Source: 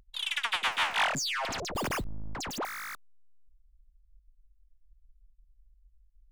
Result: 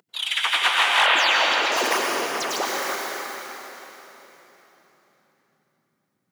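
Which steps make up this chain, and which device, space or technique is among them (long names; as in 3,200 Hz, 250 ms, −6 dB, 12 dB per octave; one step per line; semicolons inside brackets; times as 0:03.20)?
whispering ghost (random phases in short frames; high-pass filter 310 Hz 24 dB per octave; convolution reverb RT60 3.8 s, pre-delay 89 ms, DRR −2 dB)
0:01.06–0:01.72: high shelf with overshoot 4,800 Hz −8 dB, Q 1.5
level +7 dB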